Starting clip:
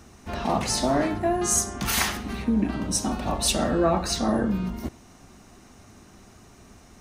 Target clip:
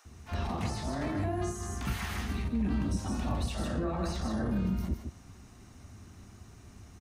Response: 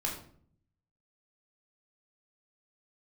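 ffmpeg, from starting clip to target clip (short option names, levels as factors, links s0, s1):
-filter_complex "[0:a]asplit=2[s0][s1];[s1]aecho=0:1:155:0.422[s2];[s0][s2]amix=inputs=2:normalize=0,alimiter=limit=0.1:level=0:latency=1:release=15,equalizer=f=84:w=1:g=11,acrossover=split=620[s3][s4];[s3]adelay=50[s5];[s5][s4]amix=inputs=2:normalize=0,acrossover=split=3000[s6][s7];[s7]acompressor=threshold=0.0112:ratio=4:attack=1:release=60[s8];[s6][s8]amix=inputs=2:normalize=0,volume=0.501"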